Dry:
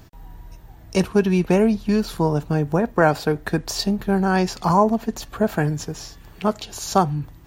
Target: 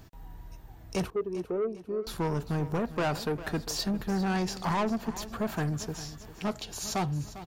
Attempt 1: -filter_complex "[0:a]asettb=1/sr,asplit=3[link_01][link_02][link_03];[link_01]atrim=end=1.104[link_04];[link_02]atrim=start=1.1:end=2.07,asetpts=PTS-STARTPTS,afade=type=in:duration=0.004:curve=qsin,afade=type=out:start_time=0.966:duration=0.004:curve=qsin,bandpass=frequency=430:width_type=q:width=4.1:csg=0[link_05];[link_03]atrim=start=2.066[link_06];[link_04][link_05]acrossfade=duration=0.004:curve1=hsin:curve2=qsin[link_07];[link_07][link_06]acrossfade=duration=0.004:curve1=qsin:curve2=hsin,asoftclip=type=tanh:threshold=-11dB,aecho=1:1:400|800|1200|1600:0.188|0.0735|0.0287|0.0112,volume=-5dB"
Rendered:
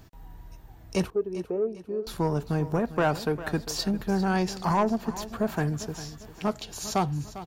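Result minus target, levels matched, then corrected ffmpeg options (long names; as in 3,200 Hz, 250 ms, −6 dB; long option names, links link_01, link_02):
soft clipping: distortion −8 dB
-filter_complex "[0:a]asettb=1/sr,asplit=3[link_01][link_02][link_03];[link_01]atrim=end=1.104[link_04];[link_02]atrim=start=1.1:end=2.07,asetpts=PTS-STARTPTS,afade=type=in:duration=0.004:curve=qsin,afade=type=out:start_time=0.966:duration=0.004:curve=qsin,bandpass=frequency=430:width_type=q:width=4.1:csg=0[link_05];[link_03]atrim=start=2.066[link_06];[link_04][link_05]acrossfade=duration=0.004:curve1=hsin:curve2=qsin[link_07];[link_07][link_06]acrossfade=duration=0.004:curve1=qsin:curve2=hsin,asoftclip=type=tanh:threshold=-19.5dB,aecho=1:1:400|800|1200|1600:0.188|0.0735|0.0287|0.0112,volume=-5dB"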